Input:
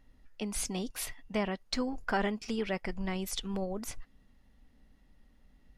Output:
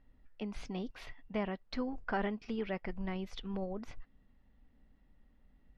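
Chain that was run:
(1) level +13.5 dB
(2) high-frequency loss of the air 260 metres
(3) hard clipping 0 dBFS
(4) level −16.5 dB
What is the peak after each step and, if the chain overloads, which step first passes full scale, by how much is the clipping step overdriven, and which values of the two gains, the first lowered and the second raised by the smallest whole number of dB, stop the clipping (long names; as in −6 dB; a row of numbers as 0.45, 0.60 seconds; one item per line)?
−4.0, −5.0, −5.0, −21.5 dBFS
no step passes full scale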